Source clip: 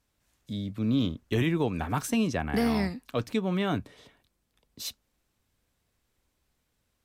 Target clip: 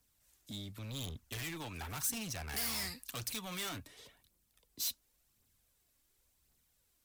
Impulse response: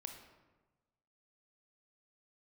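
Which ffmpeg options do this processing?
-filter_complex "[0:a]asettb=1/sr,asplit=3[s0][s1][s2];[s0]atrim=end=2.494[s3];[s1]atrim=start=2.49:end=3.69,asetpts=PTS-STARTPTS,afade=t=in:d=0.004:c=qsin,afade=t=out:st=1.196:d=0.004:c=qsin,highshelf=f=2300:g=8.5[s4];[s2]atrim=start=3.686[s5];[s3][s4]acrossfade=d=0.004:c1=hsin:c2=qsin[s6];[s6][s5]acrossfade=d=0.004:c1=qsin:c2=hsin,acrossover=split=130|800|5600[s7][s8][s9][s10];[s8]acompressor=threshold=0.01:ratio=6[s11];[s7][s11][s9][s10]amix=inputs=4:normalize=0,aphaser=in_gain=1:out_gain=1:delay=3.7:decay=0.43:speed=0.92:type=triangular,volume=53.1,asoftclip=hard,volume=0.0188,crystalizer=i=2.5:c=0,volume=0.473"

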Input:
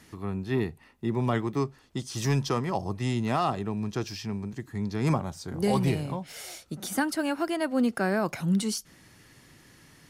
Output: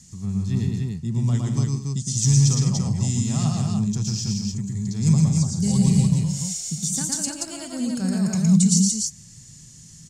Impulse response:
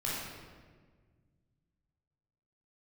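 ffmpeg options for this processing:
-filter_complex "[0:a]firequalizer=gain_entry='entry(110,0);entry(170,4);entry(310,-18);entry(1500,-20);entry(7200,13);entry(11000,-11)':delay=0.05:min_phase=1,asettb=1/sr,asplit=3[s0][s1][s2];[s0]atrim=end=2.884[s3];[s1]atrim=start=2.88:end=5.11,asetpts=PTS-STARTPTS,afade=t=in:d=0.004:c=qsin,afade=t=out:st=2.226:d=0.004:c=qsin,aphaser=in_gain=1:out_gain=1:delay=4.4:decay=0.28:speed=1.7:type=triangular[s4];[s2]atrim=start=5.106[s5];[s3][s4]acrossfade=d=0.004:c1=hsin:c2=qsin[s6];[s6][s5]acrossfade=d=0.004:c1=qsin:c2=hsin,aecho=1:1:113.7|157.4|204.1|291.5:0.794|0.316|0.251|0.708,volume=2"

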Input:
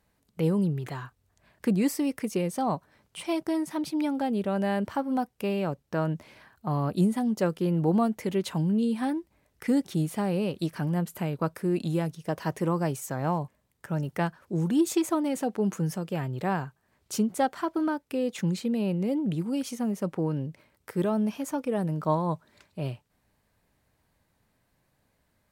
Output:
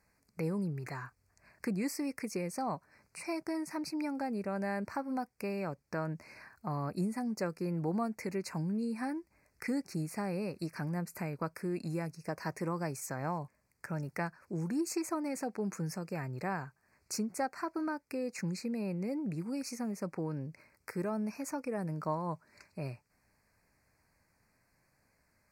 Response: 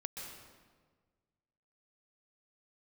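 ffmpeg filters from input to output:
-af "equalizer=f=3200:w=0.47:g=8,acompressor=threshold=0.0112:ratio=1.5,asuperstop=centerf=3300:order=8:qfactor=1.8,volume=0.668"

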